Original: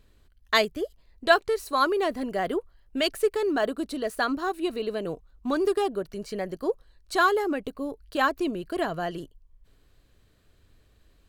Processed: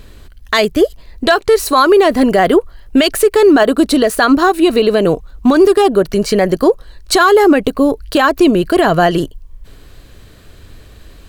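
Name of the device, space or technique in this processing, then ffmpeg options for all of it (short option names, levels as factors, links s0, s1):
loud club master: -af "acompressor=threshold=0.0282:ratio=1.5,asoftclip=type=hard:threshold=0.188,alimiter=level_in=14.1:limit=0.891:release=50:level=0:latency=1,volume=0.891"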